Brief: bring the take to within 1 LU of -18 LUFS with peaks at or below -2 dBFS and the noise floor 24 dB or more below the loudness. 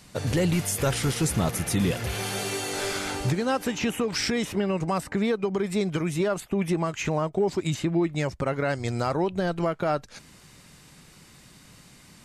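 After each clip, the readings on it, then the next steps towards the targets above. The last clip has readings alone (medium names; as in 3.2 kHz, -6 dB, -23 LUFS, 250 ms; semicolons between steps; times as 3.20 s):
loudness -27.0 LUFS; peak level -15.5 dBFS; loudness target -18.0 LUFS
-> trim +9 dB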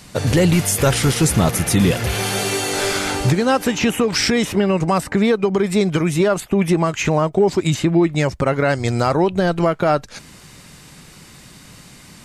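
loudness -18.0 LUFS; peak level -6.5 dBFS; noise floor -43 dBFS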